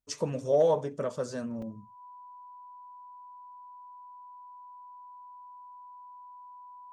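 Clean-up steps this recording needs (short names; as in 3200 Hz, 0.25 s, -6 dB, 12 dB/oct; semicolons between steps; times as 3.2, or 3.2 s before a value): notch 990 Hz, Q 30; interpolate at 1.62, 3.3 ms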